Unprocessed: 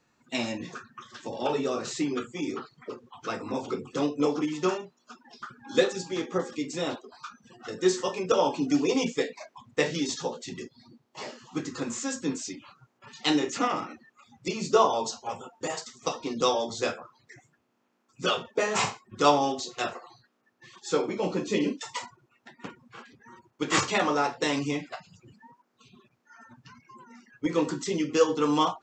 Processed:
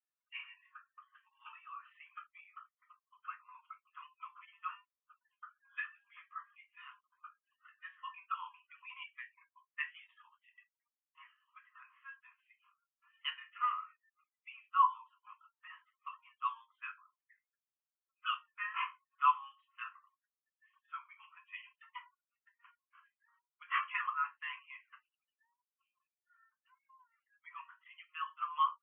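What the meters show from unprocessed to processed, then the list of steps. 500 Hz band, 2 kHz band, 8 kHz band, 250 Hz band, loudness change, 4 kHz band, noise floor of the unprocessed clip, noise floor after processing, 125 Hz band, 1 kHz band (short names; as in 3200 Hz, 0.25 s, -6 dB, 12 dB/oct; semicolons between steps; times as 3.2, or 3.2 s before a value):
under -40 dB, -9.0 dB, under -40 dB, under -40 dB, -11.0 dB, -16.5 dB, -73 dBFS, under -85 dBFS, under -40 dB, -7.0 dB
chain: Chebyshev band-pass 1000–3100 Hz, order 5; spectral expander 1.5:1; gain -3 dB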